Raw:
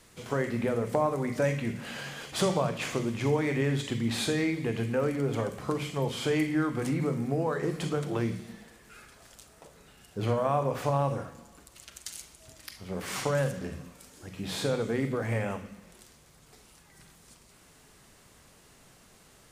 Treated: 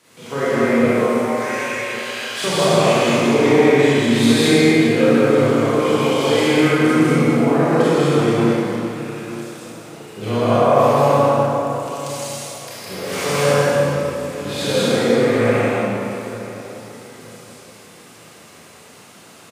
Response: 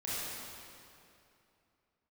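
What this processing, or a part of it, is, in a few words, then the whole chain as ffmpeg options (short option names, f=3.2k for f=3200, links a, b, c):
stadium PA: -filter_complex "[0:a]lowshelf=f=260:g=5.5,asettb=1/sr,asplit=3[a][b][c];[a]atrim=end=0.834[d];[b]atrim=start=0.83:end=2.44,asetpts=PTS-STARTPTS,afade=t=in:d=0.004:c=qsin,afade=t=out:st=1.606:d=0.004:c=qsin,highpass=1.3k[e];[c]atrim=start=2.436[f];[d][e]acrossfade=d=0.004:c1=hsin:c2=qsin[g];[g][f]acrossfade=d=0.004:c1=qsin:c2=hsin,highpass=230,equalizer=f=1.9k:t=o:w=1.5:g=6,aecho=1:1:160.3|195.3:0.708|0.794[h];[1:a]atrim=start_sample=2205[i];[h][i]afir=irnorm=-1:irlink=0,equalizer=f=1.8k:t=o:w=0.61:g=-6,asplit=2[j][k];[k]adelay=923,lowpass=f=2k:p=1,volume=-16dB,asplit=2[l][m];[m]adelay=923,lowpass=f=2k:p=1,volume=0.32,asplit=2[n][o];[o]adelay=923,lowpass=f=2k:p=1,volume=0.32[p];[j][l][n][p]amix=inputs=4:normalize=0,volume=5.5dB"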